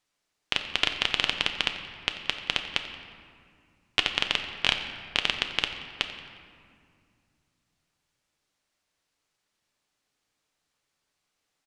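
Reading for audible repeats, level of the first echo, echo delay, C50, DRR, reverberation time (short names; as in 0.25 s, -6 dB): 1, -16.5 dB, 89 ms, 7.0 dB, 5.0 dB, 2.2 s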